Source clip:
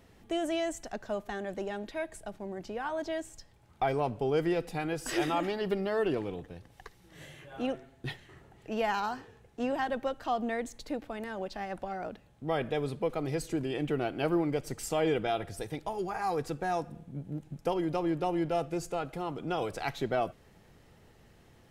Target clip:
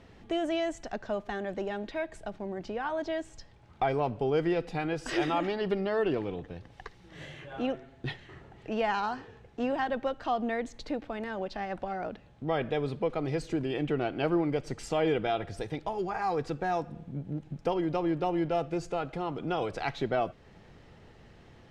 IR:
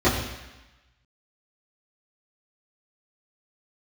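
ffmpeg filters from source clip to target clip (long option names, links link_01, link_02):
-filter_complex "[0:a]asplit=2[link_01][link_02];[link_02]acompressor=threshold=-42dB:ratio=6,volume=-2.5dB[link_03];[link_01][link_03]amix=inputs=2:normalize=0,lowpass=4900"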